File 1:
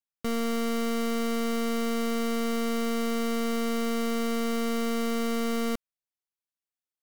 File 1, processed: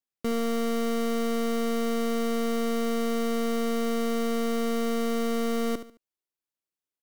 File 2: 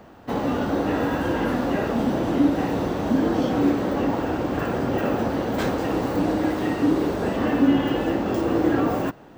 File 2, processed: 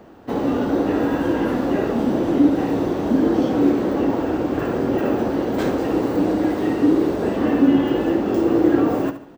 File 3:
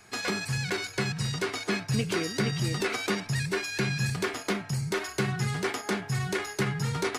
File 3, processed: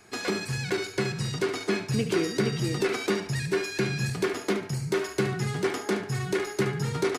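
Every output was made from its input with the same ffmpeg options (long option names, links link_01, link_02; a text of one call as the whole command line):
ffmpeg -i in.wav -af "equalizer=frequency=350:width=1.2:gain=7,aecho=1:1:72|144|216:0.266|0.0851|0.0272,volume=-1.5dB" out.wav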